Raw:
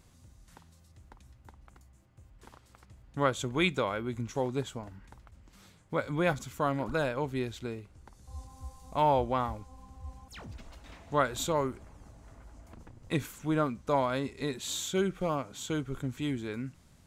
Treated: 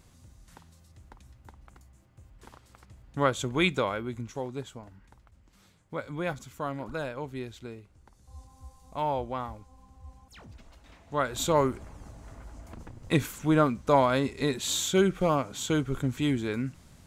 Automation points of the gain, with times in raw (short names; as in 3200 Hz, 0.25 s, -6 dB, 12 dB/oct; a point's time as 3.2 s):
3.85 s +2.5 dB
4.45 s -4 dB
11.05 s -4 dB
11.57 s +6 dB